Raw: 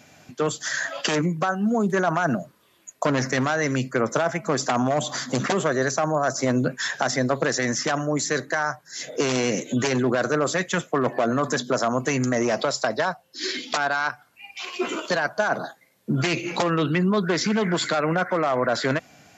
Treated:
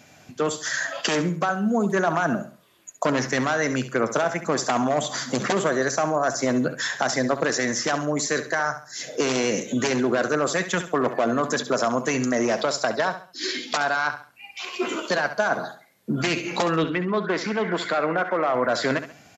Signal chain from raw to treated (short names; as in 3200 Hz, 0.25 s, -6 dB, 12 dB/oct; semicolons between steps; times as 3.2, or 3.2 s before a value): 16.84–18.55 tone controls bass -7 dB, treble -12 dB; on a send: feedback echo 68 ms, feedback 33%, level -11.5 dB; on the sum: dynamic EQ 130 Hz, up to -6 dB, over -41 dBFS, Q 2.4